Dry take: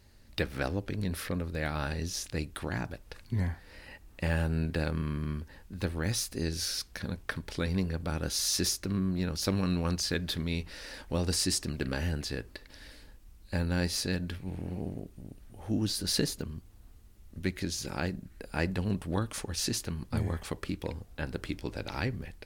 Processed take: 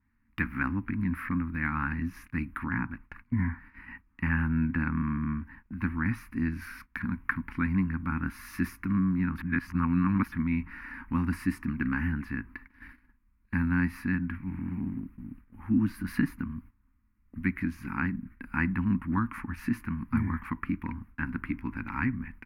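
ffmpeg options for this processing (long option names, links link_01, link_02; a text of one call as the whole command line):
ffmpeg -i in.wav -filter_complex "[0:a]asettb=1/sr,asplit=3[link_01][link_02][link_03];[link_01]atrim=end=2.644[link_04];[link_02]atrim=start=2.64:end=6.62,asetpts=PTS-STARTPTS,afade=type=in:duration=0.004:curve=qsin,afade=type=out:start_time=3.976:duration=0.004:curve=qsin,highshelf=frequency=8100:gain=-6[link_05];[link_03]atrim=start=6.616[link_06];[link_04][link_05]acrossfade=duration=0.004:curve1=hsin:curve2=qsin[link_07];[link_07][link_06]acrossfade=duration=0.004:curve1=qsin:curve2=hsin,asplit=3[link_08][link_09][link_10];[link_08]atrim=end=9.382[link_11];[link_09]atrim=start=9.378:end=10.322,asetpts=PTS-STARTPTS,areverse[link_12];[link_10]atrim=start=10.318[link_13];[link_11][link_12]acrossfade=duration=0.004:curve1=hsin:curve2=hsin[link_14];[link_14][link_13]acrossfade=duration=0.004:curve1=hsin:curve2=hsin,firequalizer=gain_entry='entry(150,0);entry(250,11);entry(430,-21);entry(630,-23);entry(970,8);entry(2300,5);entry(3400,-21);entry(7900,-25);entry(11000,-8)':delay=0.05:min_phase=1,agate=range=-15dB:threshold=-47dB:ratio=16:detection=peak,adynamicequalizer=threshold=0.00398:dfrequency=2700:dqfactor=0.7:tfrequency=2700:tqfactor=0.7:attack=5:release=100:ratio=0.375:range=3:mode=cutabove:tftype=highshelf" out.wav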